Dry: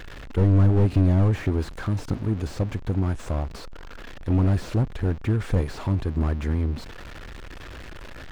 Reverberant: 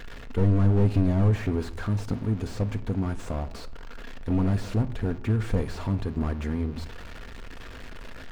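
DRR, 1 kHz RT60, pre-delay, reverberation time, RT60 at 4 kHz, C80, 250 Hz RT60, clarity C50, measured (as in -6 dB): 9.0 dB, 0.75 s, 4 ms, 0.75 s, 0.40 s, 19.5 dB, 0.80 s, 16.5 dB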